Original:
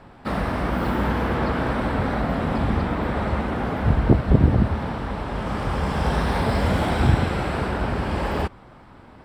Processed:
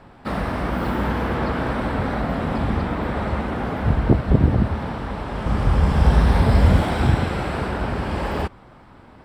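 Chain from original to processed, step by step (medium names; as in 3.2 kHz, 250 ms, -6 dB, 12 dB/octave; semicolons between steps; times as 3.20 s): 5.46–6.81 s: bass shelf 150 Hz +11.5 dB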